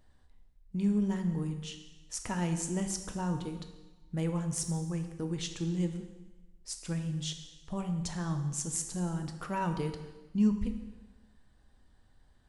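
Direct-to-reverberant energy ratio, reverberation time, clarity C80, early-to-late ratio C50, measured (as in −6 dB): 5.5 dB, 1.2 s, 10.0 dB, 8.0 dB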